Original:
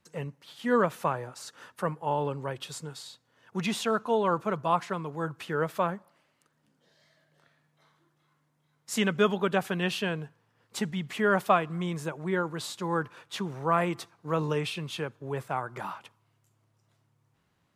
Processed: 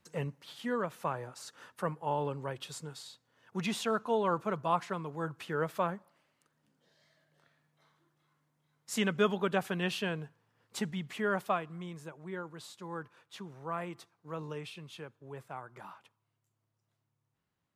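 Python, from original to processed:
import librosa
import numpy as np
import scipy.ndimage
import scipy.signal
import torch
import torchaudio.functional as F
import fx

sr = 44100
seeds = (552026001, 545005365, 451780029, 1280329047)

y = fx.gain(x, sr, db=fx.line((0.57, 0.0), (0.76, -10.5), (1.23, -4.0), (10.87, -4.0), (11.99, -12.0)))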